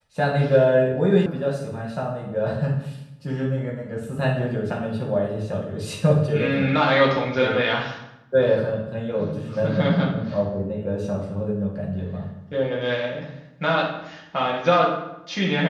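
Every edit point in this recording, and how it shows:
1.26 s: sound stops dead

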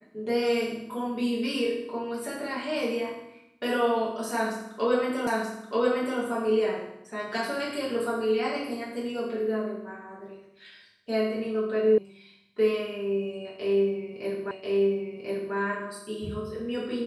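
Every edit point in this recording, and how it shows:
5.27 s: repeat of the last 0.93 s
11.98 s: sound stops dead
14.51 s: repeat of the last 1.04 s

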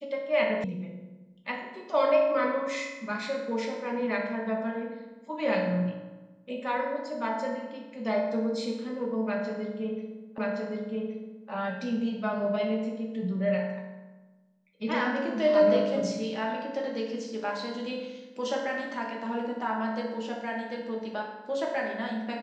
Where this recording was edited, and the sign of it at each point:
0.64 s: sound stops dead
10.38 s: repeat of the last 1.12 s

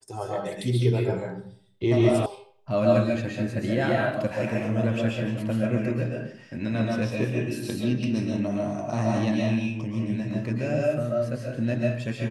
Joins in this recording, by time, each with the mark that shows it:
2.26 s: sound stops dead

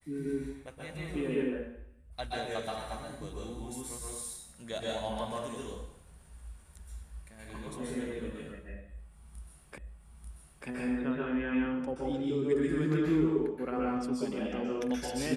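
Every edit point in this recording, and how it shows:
9.78 s: repeat of the last 0.89 s

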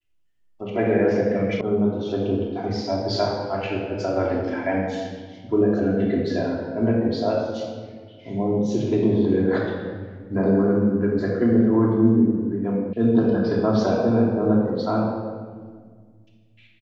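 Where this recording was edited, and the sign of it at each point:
1.61 s: sound stops dead
12.93 s: sound stops dead

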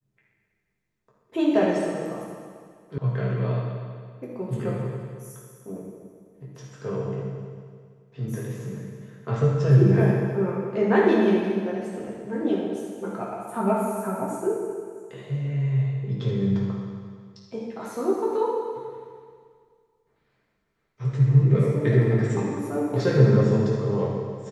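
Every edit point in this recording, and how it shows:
2.98 s: sound stops dead

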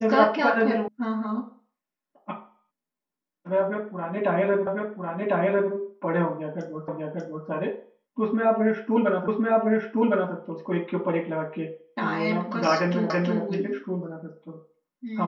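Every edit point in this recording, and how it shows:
0.88 s: sound stops dead
4.67 s: repeat of the last 1.05 s
6.88 s: repeat of the last 0.59 s
9.28 s: repeat of the last 1.06 s
13.10 s: repeat of the last 0.33 s

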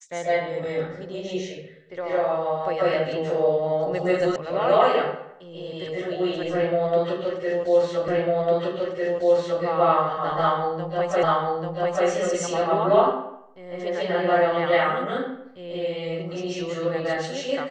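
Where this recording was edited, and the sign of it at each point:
4.36 s: sound stops dead
8.08 s: repeat of the last 1.55 s
11.23 s: repeat of the last 0.84 s

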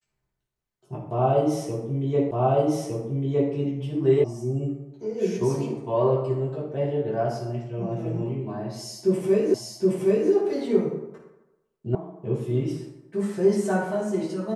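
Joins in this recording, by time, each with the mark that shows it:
2.31 s: repeat of the last 1.21 s
4.24 s: sound stops dead
9.54 s: repeat of the last 0.77 s
11.95 s: sound stops dead

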